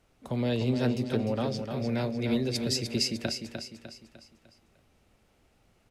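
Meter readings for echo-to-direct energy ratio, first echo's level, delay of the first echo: -5.5 dB, -6.5 dB, 0.301 s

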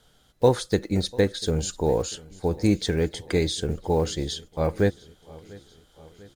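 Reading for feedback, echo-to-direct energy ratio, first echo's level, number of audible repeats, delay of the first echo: 60%, -20.5 dB, -22.5 dB, 3, 0.694 s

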